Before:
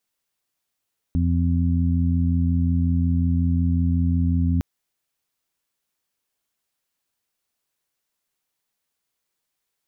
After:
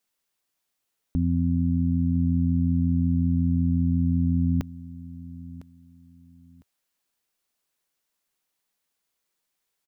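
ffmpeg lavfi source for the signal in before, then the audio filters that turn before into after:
-f lavfi -i "aevalsrc='0.112*sin(2*PI*85.5*t)+0.0631*sin(2*PI*171*t)+0.0596*sin(2*PI*256.5*t)':d=3.46:s=44100"
-af "equalizer=f=100:t=o:w=0.54:g=-8.5,aecho=1:1:1005|2010:0.126|0.0352"

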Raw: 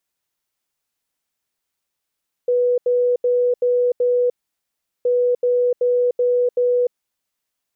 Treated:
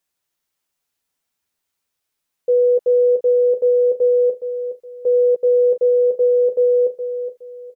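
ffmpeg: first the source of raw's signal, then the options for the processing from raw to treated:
-f lavfi -i "aevalsrc='0.2*sin(2*PI*491*t)*clip(min(mod(mod(t,2.57),0.38),0.3-mod(mod(t,2.57),0.38))/0.005,0,1)*lt(mod(t,2.57),1.9)':d=5.14:s=44100"
-filter_complex "[0:a]asplit=2[a][b];[b]adelay=12,volume=-5.5dB[c];[a][c]amix=inputs=2:normalize=0,asplit=2[d][e];[e]aecho=0:1:417|834|1251:0.316|0.0854|0.0231[f];[d][f]amix=inputs=2:normalize=0"

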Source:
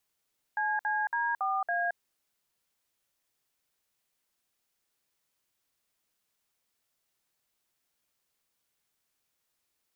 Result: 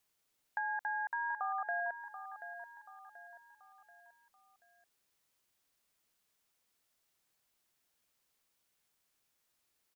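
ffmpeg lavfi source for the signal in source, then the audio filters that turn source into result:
-f lavfi -i "aevalsrc='0.0335*clip(min(mod(t,0.279),0.222-mod(t,0.279))/0.002,0,1)*(eq(floor(t/0.279),0)*(sin(2*PI*852*mod(t,0.279))+sin(2*PI*1633*mod(t,0.279)))+eq(floor(t/0.279),1)*(sin(2*PI*852*mod(t,0.279))+sin(2*PI*1633*mod(t,0.279)))+eq(floor(t/0.279),2)*(sin(2*PI*941*mod(t,0.279))+sin(2*PI*1633*mod(t,0.279)))+eq(floor(t/0.279),3)*(sin(2*PI*770*mod(t,0.279))+sin(2*PI*1209*mod(t,0.279)))+eq(floor(t/0.279),4)*(sin(2*PI*697*mod(t,0.279))+sin(2*PI*1633*mod(t,0.279))))':d=1.395:s=44100"
-af "acompressor=threshold=-35dB:ratio=4,aecho=1:1:733|1466|2199|2932:0.282|0.121|0.0521|0.0224"

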